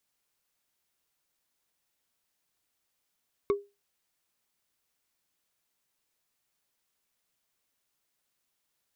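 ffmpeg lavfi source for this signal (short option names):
-f lavfi -i "aevalsrc='0.112*pow(10,-3*t/0.25)*sin(2*PI*404*t)+0.0447*pow(10,-3*t/0.074)*sin(2*PI*1113.8*t)+0.0178*pow(10,-3*t/0.033)*sin(2*PI*2183.2*t)+0.00708*pow(10,-3*t/0.018)*sin(2*PI*3608.9*t)+0.00282*pow(10,-3*t/0.011)*sin(2*PI*5389.4*t)':d=0.45:s=44100"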